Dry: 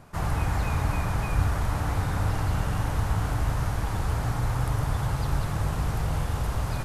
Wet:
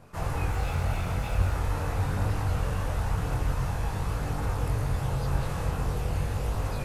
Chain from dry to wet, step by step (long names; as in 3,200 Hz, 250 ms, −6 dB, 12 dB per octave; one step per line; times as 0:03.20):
0:00.50–0:01.53: lower of the sound and its delayed copy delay 1.4 ms
multi-voice chorus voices 2, 0.45 Hz, delay 22 ms, depth 1.3 ms
hollow resonant body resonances 480/2,600 Hz, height 7 dB, ringing for 25 ms